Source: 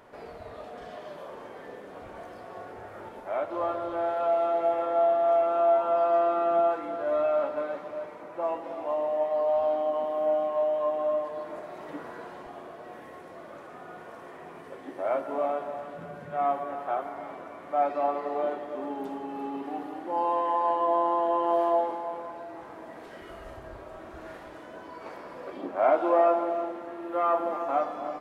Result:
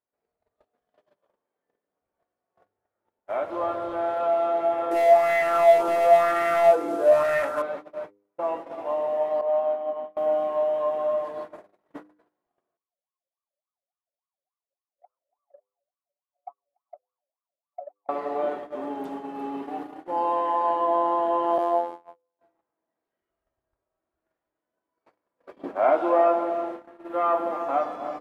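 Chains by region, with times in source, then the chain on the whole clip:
0:04.91–0:07.62: variable-slope delta modulation 64 kbit/s + hard clipping −24.5 dBFS + auto-filter bell 1 Hz 350–1,900 Hz +13 dB
0:09.41–0:10.17: downward expander −23 dBFS + band-pass filter 150–2,900 Hz + double-tracking delay 31 ms −12.5 dB
0:12.77–0:18.09: downward compressor 2 to 1, threshold −29 dBFS + LFO wah 3.5 Hz 540–1,200 Hz, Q 19
0:21.58–0:22.39: high-shelf EQ 2,900 Hz +5 dB + phases set to zero 86 Hz + expander for the loud parts, over −38 dBFS
whole clip: noise gate −36 dBFS, range −43 dB; hum removal 101.2 Hz, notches 5; level +2 dB

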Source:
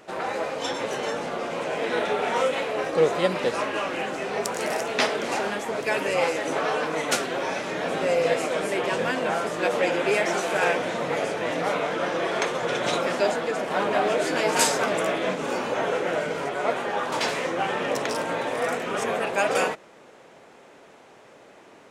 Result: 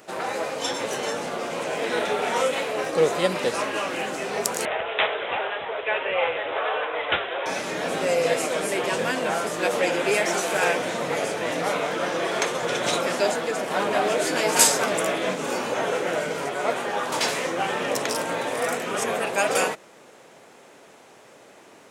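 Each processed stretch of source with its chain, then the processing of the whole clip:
0:04.65–0:07.46: high-pass filter 440 Hz 24 dB per octave + bad sample-rate conversion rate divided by 6×, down none, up filtered
whole clip: high-pass filter 62 Hz; high-shelf EQ 6,300 Hz +11.5 dB

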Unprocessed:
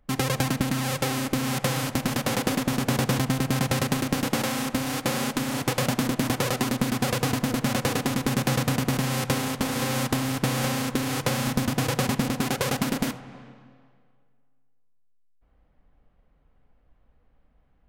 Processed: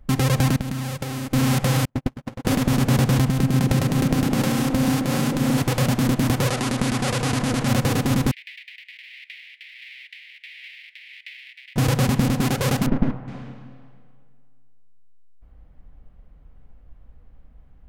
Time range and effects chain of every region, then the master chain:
0:00.56–0:01.34: noise gate −30 dBFS, range −11 dB + downward compressor 10 to 1, threshold −32 dBFS
0:01.85–0:02.45: low-pass filter 1,700 Hz 6 dB per octave + noise gate −24 dBFS, range −44 dB
0:03.28–0:05.58: downward compressor 3 to 1, threshold −26 dBFS + echo through a band-pass that steps 132 ms, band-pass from 210 Hz, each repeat 0.7 octaves, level 0 dB
0:06.48–0:07.68: Butterworth low-pass 11,000 Hz + low-shelf EQ 320 Hz −7.5 dB + envelope flattener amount 50%
0:08.31–0:11.76: running median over 9 samples + Butterworth high-pass 2,000 Hz 72 dB per octave + high-frequency loss of the air 440 metres
0:12.86–0:13.28: gain on one half-wave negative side −7 dB + low-pass filter 1,500 Hz
whole clip: brickwall limiter −15.5 dBFS; low-shelf EQ 180 Hz +11.5 dB; level +4.5 dB

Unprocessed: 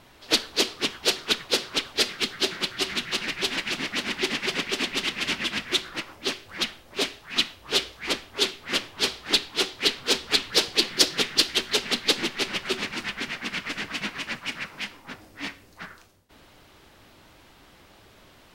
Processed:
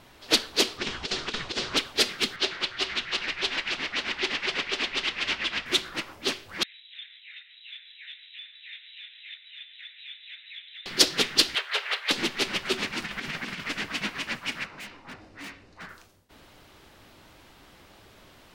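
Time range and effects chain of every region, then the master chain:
0:00.78–0:01.77: low-pass filter 7,700 Hz 24 dB per octave + low-shelf EQ 110 Hz +8 dB + compressor whose output falls as the input rises −28 dBFS, ratio −0.5
0:02.36–0:05.66: low-pass filter 5,000 Hz + parametric band 200 Hz −10.5 dB 1.6 octaves
0:06.63–0:10.86: voice inversion scrambler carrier 3,900 Hz + downward compressor 3 to 1, threshold −40 dBFS + Butterworth high-pass 1,900 Hz 48 dB per octave
0:11.55–0:12.11: three-way crossover with the lows and the highs turned down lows −21 dB, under 600 Hz, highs −17 dB, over 3,400 Hz + leveller curve on the samples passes 1 + Chebyshev high-pass with heavy ripple 390 Hz, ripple 3 dB
0:13.02–0:13.64: parametric band 160 Hz +7 dB 0.35 octaves + compressor whose output falls as the input rises −33 dBFS, ratio −0.5
0:14.64–0:15.89: low-pass filter 4,500 Hz + notch filter 3,300 Hz, Q 13 + hard clipping −38 dBFS
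whole clip: no processing

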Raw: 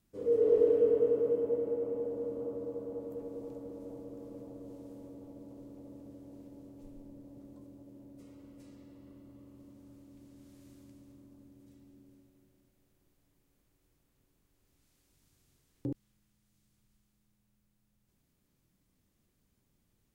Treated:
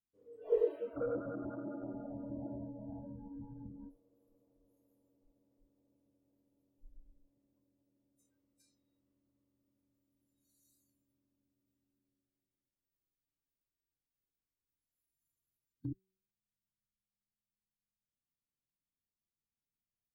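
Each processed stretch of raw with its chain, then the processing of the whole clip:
0:00.96–0:03.90: leveller curve on the samples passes 2 + Gaussian smoothing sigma 8 samples
whole clip: noise reduction from a noise print of the clip's start 27 dB; hum removal 189.8 Hz, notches 3; dynamic equaliser 290 Hz, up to −5 dB, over −48 dBFS, Q 0.71

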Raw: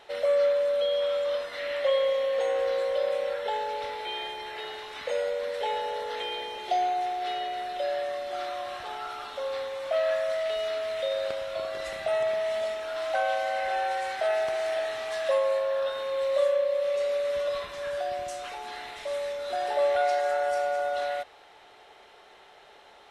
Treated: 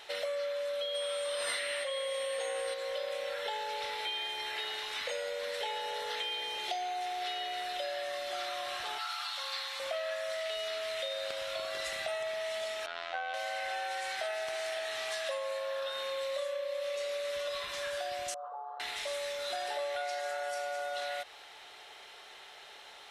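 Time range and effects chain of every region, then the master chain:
0:00.94–0:02.73: steady tone 8,700 Hz −49 dBFS + envelope flattener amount 100%
0:08.98–0:09.80: high-pass filter 820 Hz 24 dB per octave + parametric band 4,400 Hz +7.5 dB 0.24 octaves
0:12.86–0:13.34: low-pass filter 3,300 Hz + phases set to zero 85 Hz
0:18.34–0:18.80: elliptic band-pass filter 480–1,200 Hz + high-frequency loss of the air 160 metres
whole clip: tilt shelving filter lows −7 dB, about 1,400 Hz; downward compressor, threshold −35 dBFS; level +1.5 dB

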